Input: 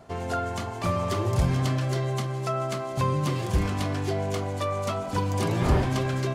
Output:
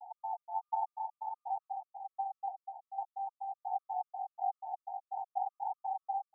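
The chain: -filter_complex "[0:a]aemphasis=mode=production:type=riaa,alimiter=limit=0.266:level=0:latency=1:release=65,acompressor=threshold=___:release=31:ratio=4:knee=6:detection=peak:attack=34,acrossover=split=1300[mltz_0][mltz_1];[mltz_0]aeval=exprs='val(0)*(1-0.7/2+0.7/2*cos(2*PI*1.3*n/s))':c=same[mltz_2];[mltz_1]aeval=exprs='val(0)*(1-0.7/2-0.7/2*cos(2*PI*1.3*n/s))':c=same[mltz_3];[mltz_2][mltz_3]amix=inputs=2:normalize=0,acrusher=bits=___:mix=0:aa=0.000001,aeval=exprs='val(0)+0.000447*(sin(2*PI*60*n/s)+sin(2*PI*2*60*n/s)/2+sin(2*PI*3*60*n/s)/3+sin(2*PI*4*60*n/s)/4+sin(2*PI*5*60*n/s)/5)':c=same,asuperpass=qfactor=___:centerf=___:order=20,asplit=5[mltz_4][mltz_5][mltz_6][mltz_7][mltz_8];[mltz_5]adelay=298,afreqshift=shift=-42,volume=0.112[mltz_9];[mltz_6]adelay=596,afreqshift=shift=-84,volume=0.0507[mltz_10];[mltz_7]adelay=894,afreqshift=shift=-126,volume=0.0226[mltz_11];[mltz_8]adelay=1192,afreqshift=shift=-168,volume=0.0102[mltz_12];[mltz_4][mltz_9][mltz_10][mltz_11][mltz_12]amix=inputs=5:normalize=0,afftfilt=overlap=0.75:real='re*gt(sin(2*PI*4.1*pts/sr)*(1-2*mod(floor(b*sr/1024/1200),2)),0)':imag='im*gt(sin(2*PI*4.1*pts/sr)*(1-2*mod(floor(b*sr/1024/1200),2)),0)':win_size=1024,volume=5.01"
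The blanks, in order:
0.0178, 11, 4, 810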